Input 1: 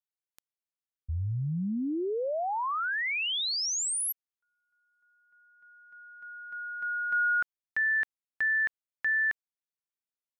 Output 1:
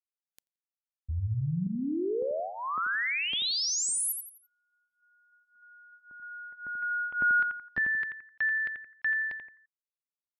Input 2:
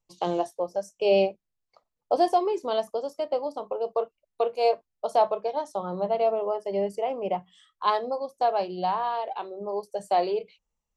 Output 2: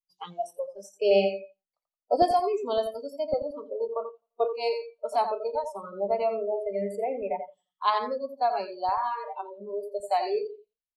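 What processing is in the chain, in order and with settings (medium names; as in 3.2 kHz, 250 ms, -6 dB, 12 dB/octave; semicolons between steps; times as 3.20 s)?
LFO notch saw up 1.8 Hz 230–2400 Hz; feedback delay 86 ms, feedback 35%, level -6.5 dB; spectral noise reduction 27 dB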